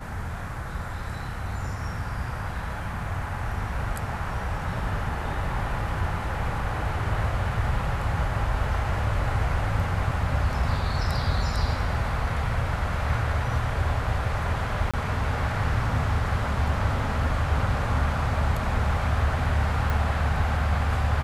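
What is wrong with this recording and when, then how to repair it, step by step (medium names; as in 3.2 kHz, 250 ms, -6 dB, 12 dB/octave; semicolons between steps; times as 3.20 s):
14.91–14.94 s: dropout 26 ms
19.90 s: pop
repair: de-click; interpolate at 14.91 s, 26 ms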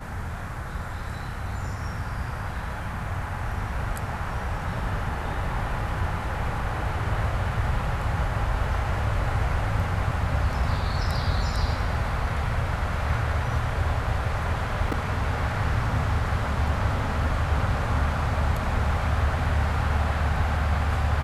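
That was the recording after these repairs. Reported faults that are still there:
19.90 s: pop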